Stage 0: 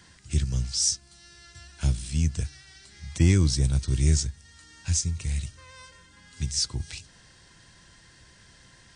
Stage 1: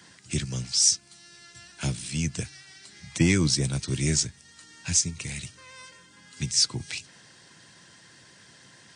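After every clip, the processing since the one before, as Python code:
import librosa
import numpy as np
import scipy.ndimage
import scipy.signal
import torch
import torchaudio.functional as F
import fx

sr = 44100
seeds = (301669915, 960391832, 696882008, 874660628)

y = scipy.signal.sosfilt(scipy.signal.butter(4, 120.0, 'highpass', fs=sr, output='sos'), x)
y = fx.dynamic_eq(y, sr, hz=2300.0, q=2.4, threshold_db=-57.0, ratio=4.0, max_db=4)
y = fx.hpss(y, sr, part='percussive', gain_db=5)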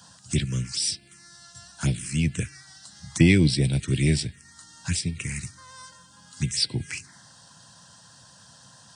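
y = fx.env_phaser(x, sr, low_hz=350.0, high_hz=1200.0, full_db=-23.5)
y = F.gain(torch.from_numpy(y), 5.0).numpy()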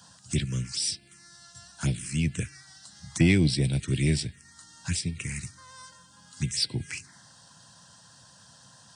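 y = 10.0 ** (-7.5 / 20.0) * np.tanh(x / 10.0 ** (-7.5 / 20.0))
y = F.gain(torch.from_numpy(y), -2.5).numpy()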